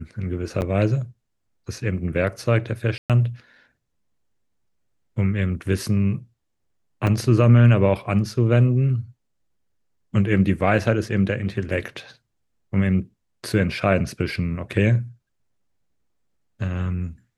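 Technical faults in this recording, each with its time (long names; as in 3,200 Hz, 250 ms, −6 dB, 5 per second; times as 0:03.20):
0:00.61–0:00.62: drop-out 9.3 ms
0:02.98–0:03.10: drop-out 117 ms
0:07.07: drop-out 3.2 ms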